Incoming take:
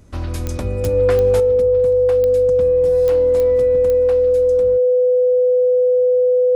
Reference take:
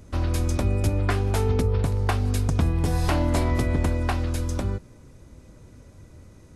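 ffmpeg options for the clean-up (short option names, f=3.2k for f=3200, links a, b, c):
-af "adeclick=t=4,bandreject=f=500:w=30,asetnsamples=n=441:p=0,asendcmd='1.4 volume volume 9dB',volume=0dB"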